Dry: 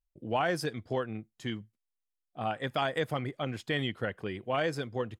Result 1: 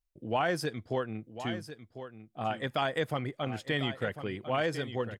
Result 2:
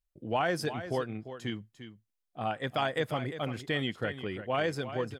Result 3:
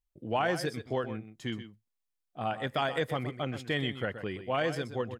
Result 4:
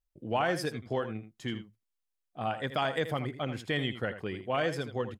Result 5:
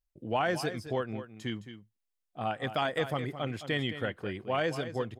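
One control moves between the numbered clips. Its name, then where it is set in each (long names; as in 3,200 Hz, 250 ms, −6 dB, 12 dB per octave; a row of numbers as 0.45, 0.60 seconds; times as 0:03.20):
single-tap delay, delay time: 1,048, 348, 126, 81, 215 milliseconds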